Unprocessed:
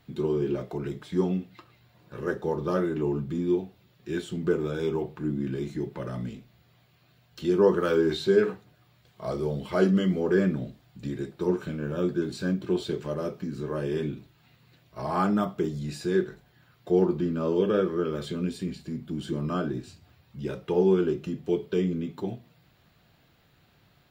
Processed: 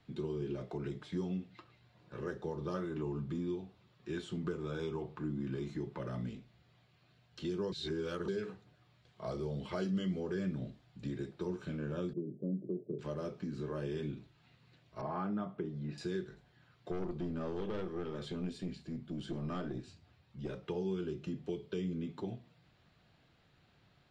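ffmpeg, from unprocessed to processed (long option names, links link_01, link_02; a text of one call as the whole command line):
ffmpeg -i in.wav -filter_complex "[0:a]asettb=1/sr,asplit=3[link_01][link_02][link_03];[link_01]atrim=end=2.744[link_04];[link_02]atrim=start=2.74:end=5.98,asetpts=PTS-STARTPTS,afade=type=in:duration=0.004:curve=qsin,afade=type=out:start_time=3.236:duration=0.004:curve=qsin,equalizer=frequency=1100:width_type=o:width=0.59:gain=6[link_05];[link_03]atrim=start=5.976[link_06];[link_04][link_05]acrossfade=duration=0.004:curve1=hsin:curve2=qsin[link_07];[link_07][link_06]acrossfade=duration=0.004:curve1=qsin:curve2=hsin,asettb=1/sr,asplit=3[link_08][link_09][link_10];[link_08]atrim=end=12.134[link_11];[link_09]atrim=start=12.13:end=12.99,asetpts=PTS-STARTPTS,afade=type=in:duration=0.004:curve=qsin,afade=type=out:start_time=0.856:duration=0.004:curve=qsin,asuperpass=centerf=280:order=12:qfactor=0.6[link_12];[link_10]atrim=start=12.986[link_13];[link_11][link_12]acrossfade=duration=0.004:curve1=hsin:curve2=qsin[link_14];[link_14][link_13]acrossfade=duration=0.004:curve1=qsin:curve2=hsin,asettb=1/sr,asplit=3[link_15][link_16][link_17];[link_15]atrim=end=15.014[link_18];[link_16]atrim=start=15.01:end=15.98,asetpts=PTS-STARTPTS,afade=type=in:duration=0.004:curve=qsin,afade=type=out:start_time=0.966:duration=0.004:curve=qsin,highpass=120,lowpass=2000[link_19];[link_17]atrim=start=15.976[link_20];[link_18][link_19]acrossfade=duration=0.004:curve1=hsin:curve2=qsin[link_21];[link_21][link_20]acrossfade=duration=0.004:curve1=qsin:curve2=hsin,asettb=1/sr,asplit=3[link_22][link_23][link_24];[link_22]atrim=end=16.914[link_25];[link_23]atrim=start=16.91:end=20.63,asetpts=PTS-STARTPTS,afade=type=in:duration=0.004:curve=qsin,afade=type=out:start_time=3.716:duration=0.004:curve=qsin,aeval=exprs='(tanh(12.6*val(0)+0.45)-tanh(0.45))/12.6':channel_layout=same[link_26];[link_24]atrim=start=20.626[link_27];[link_25][link_26]acrossfade=duration=0.004:curve1=hsin:curve2=qsin[link_28];[link_28][link_27]acrossfade=duration=0.004:curve1=qsin:curve2=hsin,asplit=3[link_29][link_30][link_31];[link_29]atrim=end=7.722[link_32];[link_30]atrim=start=7.718:end=8.282,asetpts=PTS-STARTPTS,areverse[link_33];[link_31]atrim=start=8.278[link_34];[link_32][link_33]acrossfade=duration=0.004:curve1=hsin:curve2=hsin[link_35];[link_35][link_34]acrossfade=duration=0.004:curve1=hsin:curve2=hsin,lowpass=6500,acrossover=split=150|3000[link_36][link_37][link_38];[link_37]acompressor=threshold=-31dB:ratio=6[link_39];[link_36][link_39][link_38]amix=inputs=3:normalize=0,volume=-5.5dB" out.wav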